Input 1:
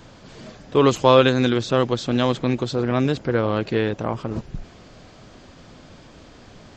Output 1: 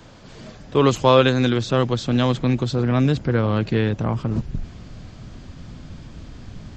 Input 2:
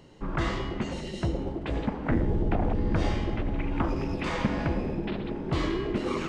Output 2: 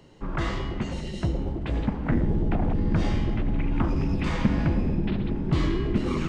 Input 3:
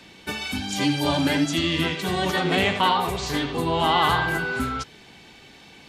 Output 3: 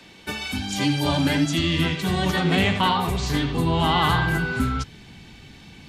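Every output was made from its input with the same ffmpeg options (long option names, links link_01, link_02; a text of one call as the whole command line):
ffmpeg -i in.wav -filter_complex "[0:a]asubboost=boost=4.5:cutoff=220,acrossover=split=160[link_01][link_02];[link_01]asoftclip=type=tanh:threshold=-23dB[link_03];[link_03][link_02]amix=inputs=2:normalize=0" out.wav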